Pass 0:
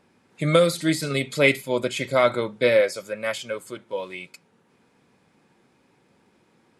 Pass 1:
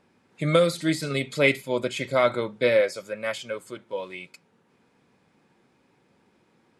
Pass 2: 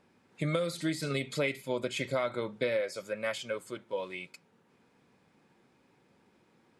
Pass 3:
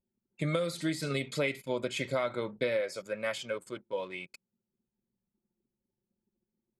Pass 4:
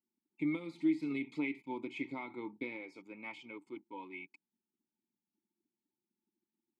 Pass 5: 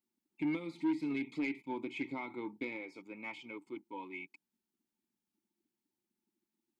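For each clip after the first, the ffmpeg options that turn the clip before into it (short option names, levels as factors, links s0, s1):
-af "highshelf=f=9700:g=-7,volume=0.794"
-af "acompressor=threshold=0.0562:ratio=6,volume=0.75"
-af "anlmdn=0.00251"
-filter_complex "[0:a]asplit=3[s0][s1][s2];[s0]bandpass=f=300:t=q:w=8,volume=1[s3];[s1]bandpass=f=870:t=q:w=8,volume=0.501[s4];[s2]bandpass=f=2240:t=q:w=8,volume=0.355[s5];[s3][s4][s5]amix=inputs=3:normalize=0,volume=2"
-af "asoftclip=type=tanh:threshold=0.0355,volume=1.26"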